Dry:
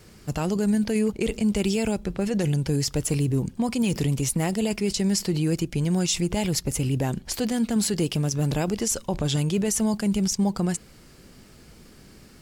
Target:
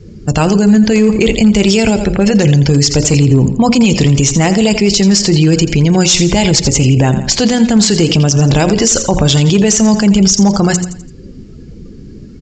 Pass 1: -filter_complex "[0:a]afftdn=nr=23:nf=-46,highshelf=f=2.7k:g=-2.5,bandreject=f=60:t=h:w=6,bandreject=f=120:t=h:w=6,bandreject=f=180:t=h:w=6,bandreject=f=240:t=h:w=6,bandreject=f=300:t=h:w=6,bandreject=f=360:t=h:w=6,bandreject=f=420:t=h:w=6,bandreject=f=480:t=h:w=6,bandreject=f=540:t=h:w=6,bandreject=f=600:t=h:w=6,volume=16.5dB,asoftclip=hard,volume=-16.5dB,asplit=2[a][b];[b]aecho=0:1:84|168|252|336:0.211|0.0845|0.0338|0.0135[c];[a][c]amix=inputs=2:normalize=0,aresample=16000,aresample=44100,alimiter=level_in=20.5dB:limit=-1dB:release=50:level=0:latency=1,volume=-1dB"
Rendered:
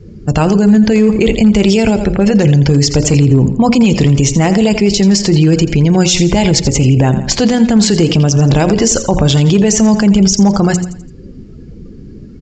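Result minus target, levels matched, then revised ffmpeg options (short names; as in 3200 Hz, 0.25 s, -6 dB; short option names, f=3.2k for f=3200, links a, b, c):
4000 Hz band -2.5 dB
-filter_complex "[0:a]afftdn=nr=23:nf=-46,highshelf=f=2.7k:g=5.5,bandreject=f=60:t=h:w=6,bandreject=f=120:t=h:w=6,bandreject=f=180:t=h:w=6,bandreject=f=240:t=h:w=6,bandreject=f=300:t=h:w=6,bandreject=f=360:t=h:w=6,bandreject=f=420:t=h:w=6,bandreject=f=480:t=h:w=6,bandreject=f=540:t=h:w=6,bandreject=f=600:t=h:w=6,volume=16.5dB,asoftclip=hard,volume=-16.5dB,asplit=2[a][b];[b]aecho=0:1:84|168|252|336:0.211|0.0845|0.0338|0.0135[c];[a][c]amix=inputs=2:normalize=0,aresample=16000,aresample=44100,alimiter=level_in=20.5dB:limit=-1dB:release=50:level=0:latency=1,volume=-1dB"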